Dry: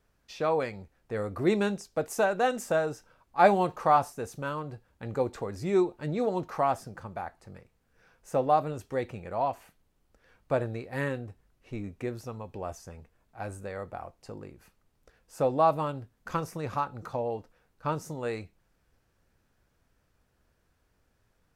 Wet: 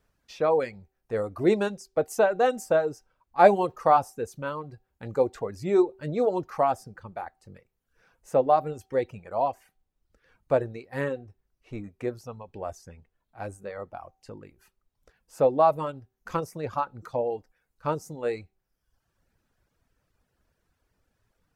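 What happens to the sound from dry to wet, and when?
9.51–14.45 high shelf 9100 Hz -4 dB
whole clip: de-hum 383.6 Hz, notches 2; reverb removal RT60 0.91 s; dynamic EQ 490 Hz, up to +6 dB, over -39 dBFS, Q 0.99

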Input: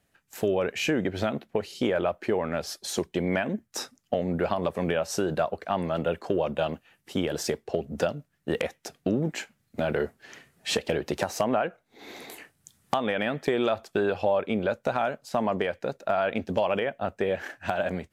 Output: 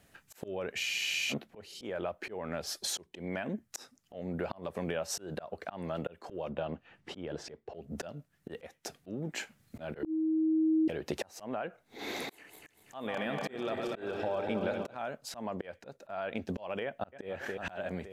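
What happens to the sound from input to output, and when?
0.81 spectral freeze 0.51 s
6.49–7.74 tape spacing loss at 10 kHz 22 dB
10.03–10.88 bleep 317 Hz -10 dBFS
12.32–14.95 regenerating reverse delay 0.12 s, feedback 78%, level -7.5 dB
16.84–17.29 echo throw 0.28 s, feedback 50%, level -10 dB
whole clip: auto swell 0.76 s; compressor 3:1, threshold -42 dBFS; gain +7.5 dB

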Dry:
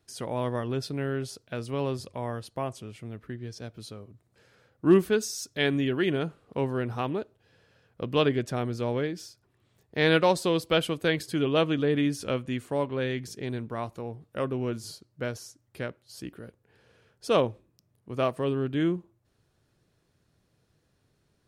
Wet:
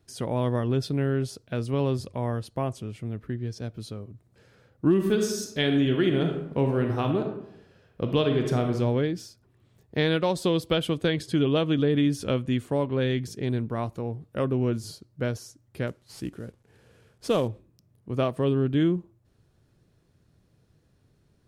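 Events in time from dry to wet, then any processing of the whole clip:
4.92–8.76 reverb throw, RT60 0.82 s, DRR 4 dB
10.95–11.47 LPF 10000 Hz
15.87–17.48 CVSD 64 kbps
whole clip: dynamic EQ 3400 Hz, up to +6 dB, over -52 dBFS, Q 5.4; compressor 5:1, threshold -23 dBFS; low shelf 400 Hz +8 dB

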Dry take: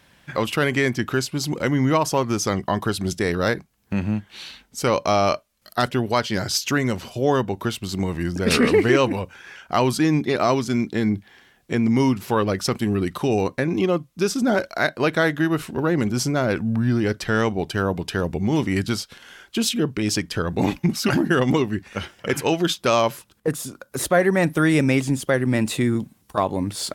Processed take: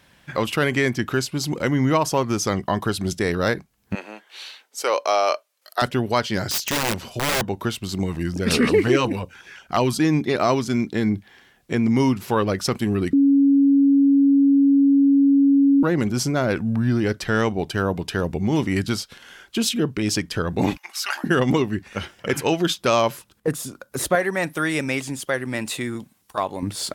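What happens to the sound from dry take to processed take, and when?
3.95–5.82 HPF 420 Hz 24 dB/oct
6.45–7.46 wrapped overs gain 16.5 dB
7.98–10 LFO notch saw down 5.6 Hz 330–2500 Hz
13.13–15.83 bleep 278 Hz -12 dBFS
20.77–21.24 HPF 860 Hz 24 dB/oct
24.15–26.63 low shelf 430 Hz -11 dB

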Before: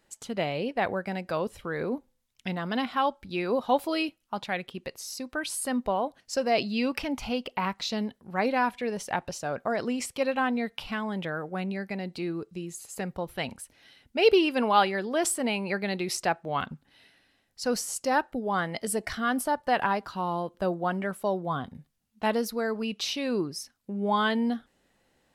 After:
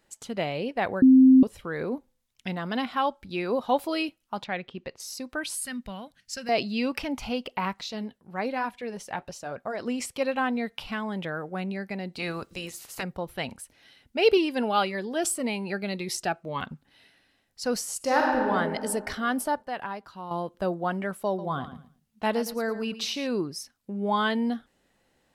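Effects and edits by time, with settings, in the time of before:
1.02–1.43 bleep 261 Hz -11 dBFS
4.44–5 air absorption 120 m
5.56–6.49 band shelf 560 Hz -15 dB 2.3 oct
7.81–9.86 flange 1.1 Hz, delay 0.9 ms, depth 5.9 ms, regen -65%
12.18–13.02 spectral limiter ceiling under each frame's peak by 21 dB
14.37–16.61 cascading phaser falling 1.9 Hz
17.97–18.49 reverb throw, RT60 1.9 s, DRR -2.5 dB
19.63–20.31 gain -8.5 dB
21.27–23.27 feedback echo 0.114 s, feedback 22%, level -13 dB

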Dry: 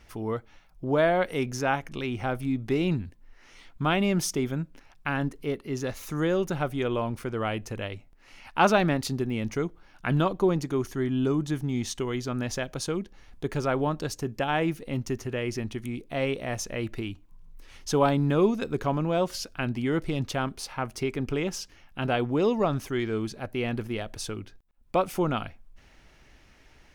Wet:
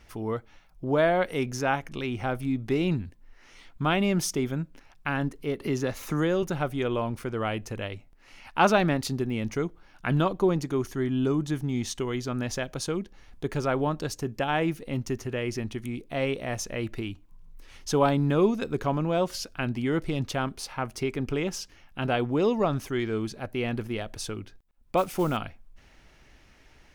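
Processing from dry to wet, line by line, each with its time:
5.6–6.43 three-band squash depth 70%
24.97–25.37 modulation noise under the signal 25 dB

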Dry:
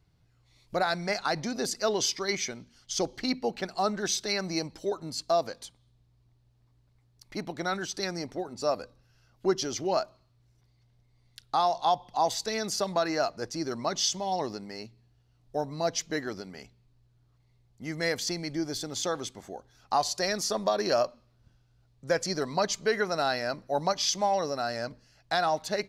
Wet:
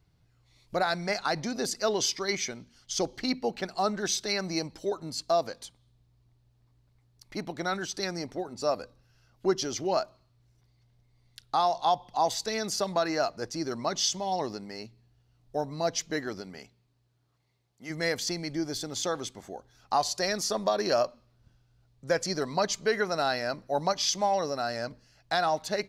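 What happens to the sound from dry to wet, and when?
16.58–17.89 HPF 130 Hz -> 490 Hz 6 dB/oct

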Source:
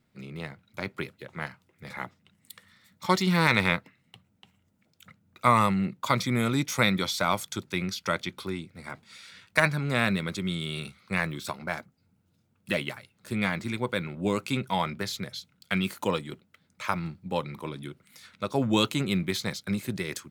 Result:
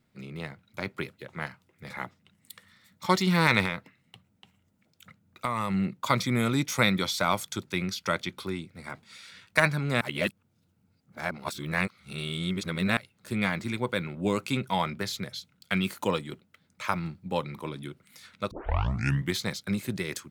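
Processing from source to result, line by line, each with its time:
3.62–5.74 compressor 10:1, threshold -24 dBFS
10.01–12.97 reverse
18.51 tape start 0.84 s

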